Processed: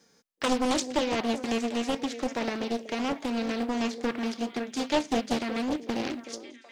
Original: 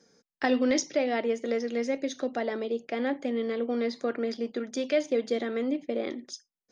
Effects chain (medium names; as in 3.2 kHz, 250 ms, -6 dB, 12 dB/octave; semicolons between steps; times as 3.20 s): formants flattened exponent 0.6; repeats whose band climbs or falls 375 ms, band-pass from 370 Hz, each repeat 1.4 oct, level -8 dB; loudspeaker Doppler distortion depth 0.86 ms